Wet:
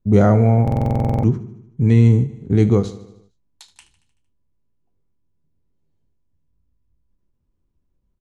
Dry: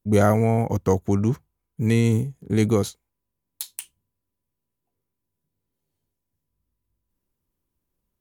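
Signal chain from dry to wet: LPF 7800 Hz 24 dB/oct; tilt -2.5 dB/oct; doubler 25 ms -12 dB; feedback echo 76 ms, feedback 58%, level -16 dB; stuck buffer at 0.63, samples 2048, times 12; ending taper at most 220 dB/s

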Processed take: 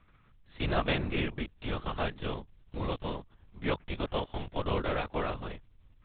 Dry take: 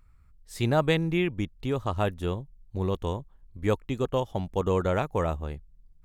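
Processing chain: spectral whitening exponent 0.6; LPC vocoder at 8 kHz whisper; gain -5.5 dB

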